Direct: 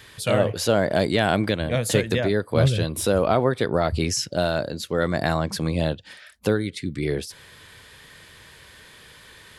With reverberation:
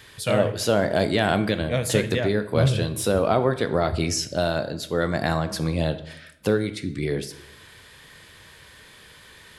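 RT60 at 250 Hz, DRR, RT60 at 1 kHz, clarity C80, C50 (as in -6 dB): 0.95 s, 10.0 dB, 0.70 s, 16.0 dB, 13.5 dB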